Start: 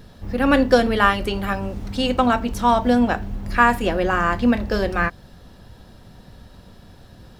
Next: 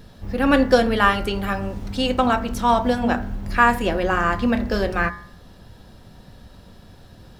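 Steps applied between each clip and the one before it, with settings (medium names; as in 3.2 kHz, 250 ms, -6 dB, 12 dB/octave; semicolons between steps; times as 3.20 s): de-hum 60.69 Hz, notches 37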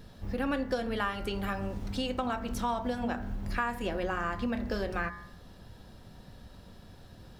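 compression 4:1, threshold -24 dBFS, peak gain reduction 12.5 dB; trim -5.5 dB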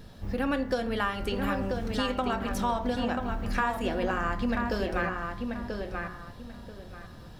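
filtered feedback delay 986 ms, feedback 25%, low-pass 3.8 kHz, level -4.5 dB; trim +2.5 dB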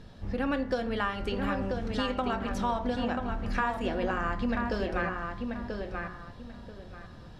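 distance through air 59 m; trim -1 dB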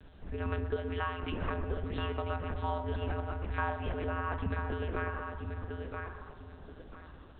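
monotone LPC vocoder at 8 kHz 170 Hz; tape echo 124 ms, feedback 78%, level -10.5 dB, low-pass 2 kHz; frequency shift -76 Hz; trim -4.5 dB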